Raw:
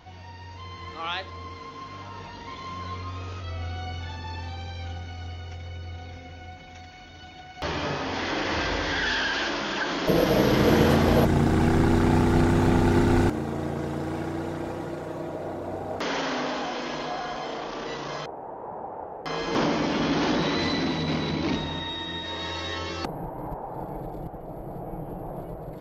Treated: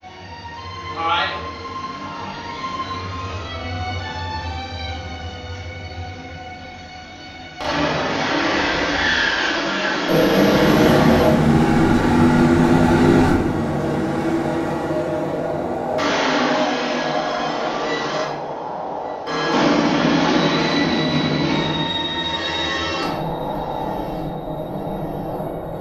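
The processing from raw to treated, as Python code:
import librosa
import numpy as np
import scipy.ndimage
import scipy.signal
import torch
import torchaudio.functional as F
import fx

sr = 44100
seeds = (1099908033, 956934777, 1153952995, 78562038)

p1 = fx.low_shelf(x, sr, hz=170.0, db=-12.0)
p2 = fx.rider(p1, sr, range_db=4, speed_s=2.0)
p3 = p1 + (p2 * librosa.db_to_amplitude(0.5))
p4 = fx.granulator(p3, sr, seeds[0], grain_ms=100.0, per_s=20.0, spray_ms=38.0, spread_st=0)
p5 = fx.echo_feedback(p4, sr, ms=1163, feedback_pct=47, wet_db=-20.5)
p6 = fx.room_shoebox(p5, sr, seeds[1], volume_m3=270.0, walls='mixed', distance_m=2.3)
y = p6 * librosa.db_to_amplitude(-3.0)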